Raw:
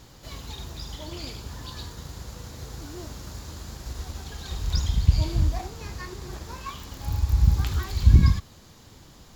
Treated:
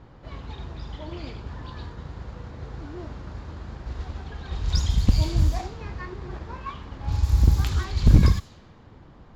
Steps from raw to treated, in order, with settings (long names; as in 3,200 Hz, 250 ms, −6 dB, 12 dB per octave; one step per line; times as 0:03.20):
wavefolder on the positive side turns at −13 dBFS
low-pass that shuts in the quiet parts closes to 1,500 Hz, open at −17.5 dBFS
level +2 dB